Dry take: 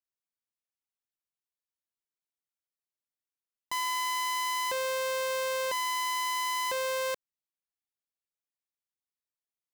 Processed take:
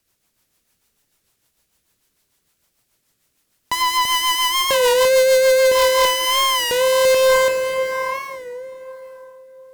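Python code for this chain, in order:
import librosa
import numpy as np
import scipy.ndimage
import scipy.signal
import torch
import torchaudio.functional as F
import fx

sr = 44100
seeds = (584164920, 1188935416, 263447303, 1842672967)

p1 = fx.low_shelf(x, sr, hz=260.0, db=7.5)
p2 = fx.comb_fb(p1, sr, f0_hz=58.0, decay_s=0.88, harmonics='all', damping=0.0, mix_pct=50)
p3 = fx.rev_plate(p2, sr, seeds[0], rt60_s=3.8, hf_ratio=0.65, predelay_ms=0, drr_db=10.0)
p4 = fx.over_compress(p3, sr, threshold_db=-47.0, ratio=-1.0)
p5 = p3 + (p4 * librosa.db_to_amplitude(0.0))
p6 = fx.peak_eq(p5, sr, hz=13000.0, db=2.0, octaves=1.6)
p7 = p6 + fx.echo_single(p6, sr, ms=337, db=-4.0, dry=0)
p8 = fx.rotary_switch(p7, sr, hz=6.7, then_hz=1.1, switch_at_s=5.53)
p9 = fx.fold_sine(p8, sr, drive_db=9, ceiling_db=-16.0)
p10 = fx.record_warp(p9, sr, rpm=33.33, depth_cents=100.0)
y = p10 * librosa.db_to_amplitude(6.5)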